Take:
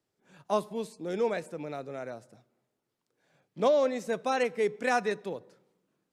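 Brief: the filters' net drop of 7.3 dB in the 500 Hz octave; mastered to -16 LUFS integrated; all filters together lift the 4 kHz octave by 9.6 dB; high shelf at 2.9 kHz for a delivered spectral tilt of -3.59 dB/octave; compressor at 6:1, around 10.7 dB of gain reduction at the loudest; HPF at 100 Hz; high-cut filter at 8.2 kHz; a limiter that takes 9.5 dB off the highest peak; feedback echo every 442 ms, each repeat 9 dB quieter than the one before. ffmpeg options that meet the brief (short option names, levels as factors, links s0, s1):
-af "highpass=100,lowpass=8200,equalizer=f=500:t=o:g=-9,highshelf=f=2900:g=7,equalizer=f=4000:t=o:g=6.5,acompressor=threshold=0.02:ratio=6,alimiter=level_in=2.66:limit=0.0631:level=0:latency=1,volume=0.376,aecho=1:1:442|884|1326|1768:0.355|0.124|0.0435|0.0152,volume=23.7"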